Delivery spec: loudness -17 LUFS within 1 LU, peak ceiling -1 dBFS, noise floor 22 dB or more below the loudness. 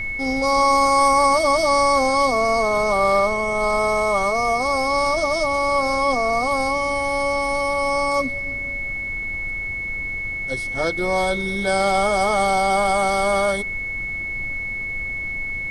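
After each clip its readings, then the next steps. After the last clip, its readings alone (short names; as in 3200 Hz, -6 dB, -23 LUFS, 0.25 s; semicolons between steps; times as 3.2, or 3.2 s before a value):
steady tone 2200 Hz; tone level -25 dBFS; noise floor -28 dBFS; noise floor target -42 dBFS; loudness -20.0 LUFS; peak -5.0 dBFS; loudness target -17.0 LUFS
-> notch 2200 Hz, Q 30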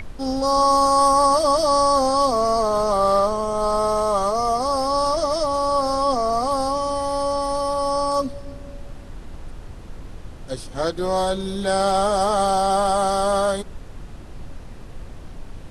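steady tone none; noise floor -38 dBFS; noise floor target -42 dBFS
-> noise print and reduce 6 dB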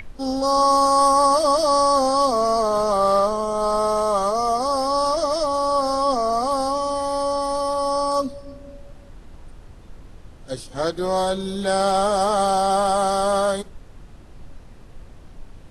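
noise floor -43 dBFS; loudness -20.0 LUFS; peak -5.5 dBFS; loudness target -17.0 LUFS
-> gain +3 dB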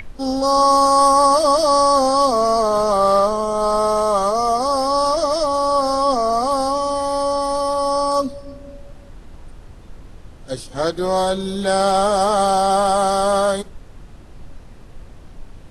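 loudness -17.0 LUFS; peak -2.5 dBFS; noise floor -40 dBFS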